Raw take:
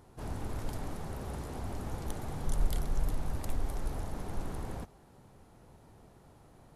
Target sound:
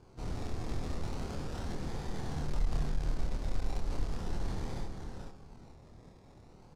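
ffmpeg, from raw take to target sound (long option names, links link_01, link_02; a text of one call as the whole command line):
ffmpeg -i in.wav -filter_complex "[0:a]bandreject=frequency=610:width=15,aecho=1:1:439|878|1317:0.531|0.122|0.0281,acrusher=samples=23:mix=1:aa=0.000001:lfo=1:lforange=13.8:lforate=0.37,asoftclip=type=tanh:threshold=-25dB,aexciter=amount=9.5:drive=3.4:freq=4200,adynamicsmooth=sensitivity=1.5:basefreq=2100,asplit=2[link_01][link_02];[link_02]adelay=26,volume=-3dB[link_03];[link_01][link_03]amix=inputs=2:normalize=0,asplit=2[link_04][link_05];[link_05]asetrate=22050,aresample=44100,atempo=2,volume=-7dB[link_06];[link_04][link_06]amix=inputs=2:normalize=0,volume=-1.5dB" out.wav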